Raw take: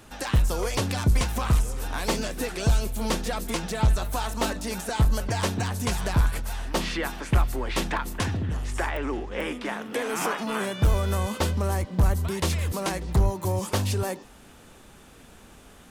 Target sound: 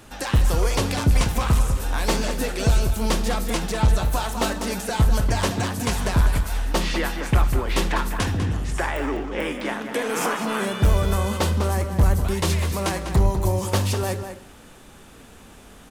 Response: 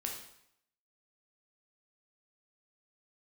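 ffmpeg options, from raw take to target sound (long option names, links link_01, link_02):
-filter_complex "[0:a]asplit=2[link_01][link_02];[link_02]adelay=198.3,volume=-8dB,highshelf=frequency=4000:gain=-4.46[link_03];[link_01][link_03]amix=inputs=2:normalize=0,asplit=2[link_04][link_05];[1:a]atrim=start_sample=2205,asetrate=48510,aresample=44100[link_06];[link_05][link_06]afir=irnorm=-1:irlink=0,volume=-5dB[link_07];[link_04][link_07]amix=inputs=2:normalize=0"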